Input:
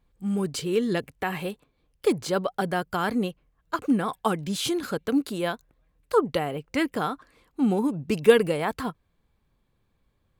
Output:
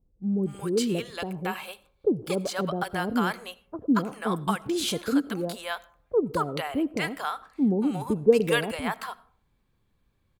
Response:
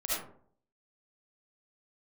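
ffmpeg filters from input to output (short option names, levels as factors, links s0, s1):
-filter_complex "[0:a]asettb=1/sr,asplit=3[s0][s1][s2];[s0]atrim=end=0.904[s3];[s1]atrim=start=0.9:end=2.23,asetpts=PTS-STARTPTS,afade=t=in:d=0.004:c=qsin,afade=t=out:st=1.326:d=0.004:c=qsin,equalizer=f=1900:w=7.9:g=-11.5[s4];[s2]atrim=start=2.226[s5];[s3][s4]acrossfade=d=0.004:c1=hsin:c2=qsin[s6];[s6][s5]acrossfade=d=0.004:c1=qsin:c2=hsin,acrossover=split=640[s7][s8];[s8]adelay=230[s9];[s7][s9]amix=inputs=2:normalize=0,asplit=2[s10][s11];[1:a]atrim=start_sample=2205,adelay=10[s12];[s11][s12]afir=irnorm=-1:irlink=0,volume=0.0531[s13];[s10][s13]amix=inputs=2:normalize=0"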